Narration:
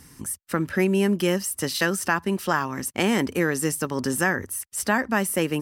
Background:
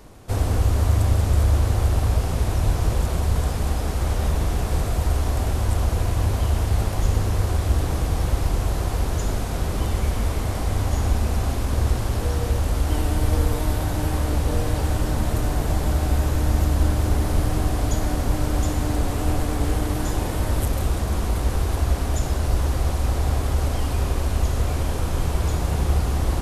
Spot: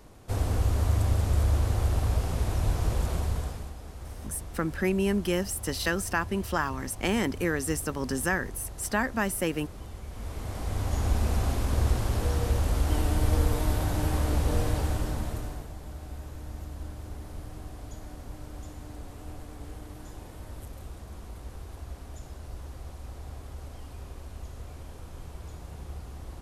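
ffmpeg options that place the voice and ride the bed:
-filter_complex "[0:a]adelay=4050,volume=0.562[s0];[1:a]volume=2.66,afade=t=out:st=3.15:d=0.57:silence=0.237137,afade=t=in:st=10.08:d=1.19:silence=0.188365,afade=t=out:st=14.63:d=1.07:silence=0.16788[s1];[s0][s1]amix=inputs=2:normalize=0"

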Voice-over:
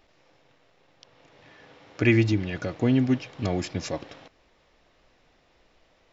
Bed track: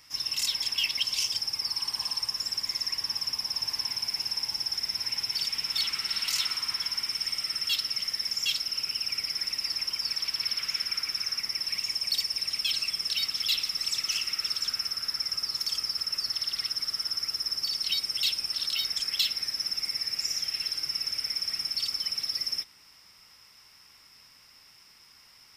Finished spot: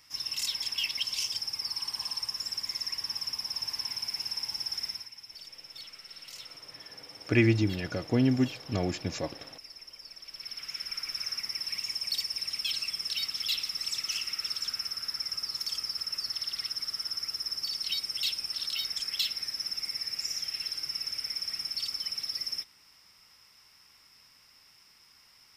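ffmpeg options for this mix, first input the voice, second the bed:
-filter_complex "[0:a]adelay=5300,volume=0.708[s0];[1:a]volume=3.16,afade=t=out:st=4.85:d=0.24:silence=0.211349,afade=t=in:st=10.21:d=1.03:silence=0.211349[s1];[s0][s1]amix=inputs=2:normalize=0"

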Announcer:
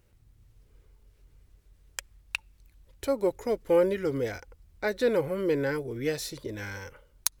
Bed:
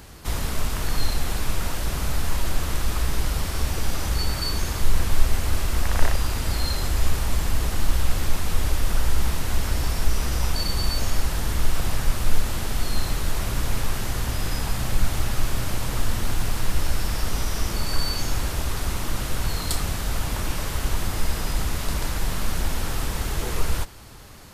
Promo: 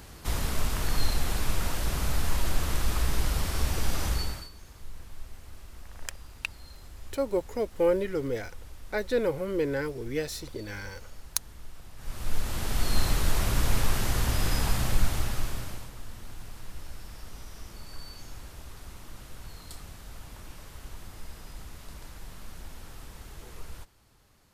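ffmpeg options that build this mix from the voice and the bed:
-filter_complex "[0:a]adelay=4100,volume=0.841[s0];[1:a]volume=10,afade=t=out:st=4.07:d=0.42:silence=0.0944061,afade=t=in:st=11.96:d=1.05:silence=0.0707946,afade=t=out:st=14.68:d=1.24:silence=0.125893[s1];[s0][s1]amix=inputs=2:normalize=0"

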